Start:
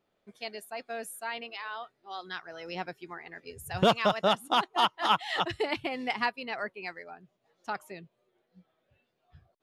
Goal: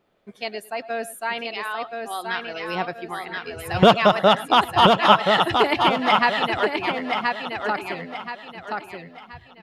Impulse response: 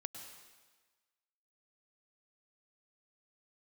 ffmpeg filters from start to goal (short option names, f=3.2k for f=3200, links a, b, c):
-filter_complex "[0:a]aecho=1:1:1027|2054|3081|4108:0.631|0.215|0.0729|0.0248,asplit=2[a][b];[1:a]atrim=start_sample=2205,afade=t=out:st=0.16:d=0.01,atrim=end_sample=7497,lowpass=4.5k[c];[b][c]afir=irnorm=-1:irlink=0,volume=0.5dB[d];[a][d]amix=inputs=2:normalize=0,volume=5dB"